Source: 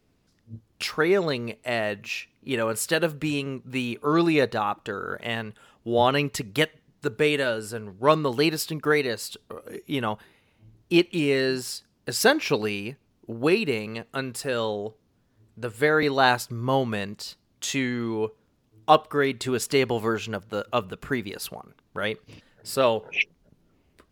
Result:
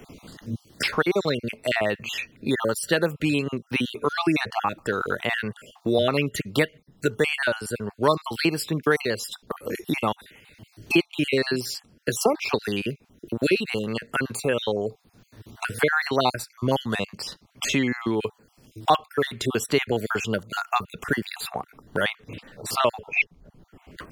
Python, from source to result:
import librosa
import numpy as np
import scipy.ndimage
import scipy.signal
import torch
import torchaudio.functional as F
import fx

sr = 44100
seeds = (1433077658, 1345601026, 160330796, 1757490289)

y = fx.spec_dropout(x, sr, seeds[0], share_pct=39)
y = fx.band_squash(y, sr, depth_pct=70)
y = y * 10.0 ** (3.0 / 20.0)